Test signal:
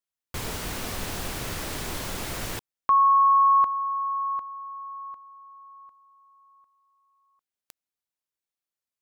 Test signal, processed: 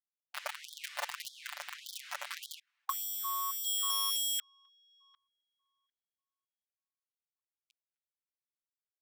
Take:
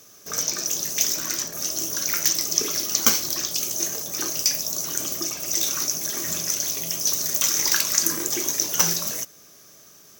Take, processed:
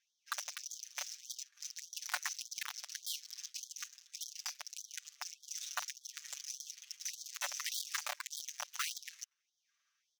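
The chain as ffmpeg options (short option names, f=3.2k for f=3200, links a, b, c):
-filter_complex "[0:a]equalizer=f=180:w=0.49:g=-11.5,asplit=2[a][b];[b]aecho=0:1:258|516|774:0.0794|0.0318|0.0127[c];[a][c]amix=inputs=2:normalize=0,adynamicsmooth=sensitivity=4.5:basefreq=770,acrossover=split=1900[d][e];[d]acrusher=bits=4:mix=0:aa=0.000001[f];[e]acompressor=threshold=-38dB:ratio=5:attack=1.3:release=401:knee=6:detection=rms[g];[f][g]amix=inputs=2:normalize=0,alimiter=limit=-23dB:level=0:latency=1:release=28,aecho=1:1:6.8:0.87,afftfilt=real='re*gte(b*sr/1024,500*pow(3200/500,0.5+0.5*sin(2*PI*1.7*pts/sr)))':imag='im*gte(b*sr/1024,500*pow(3200/500,0.5+0.5*sin(2*PI*1.7*pts/sr)))':win_size=1024:overlap=0.75"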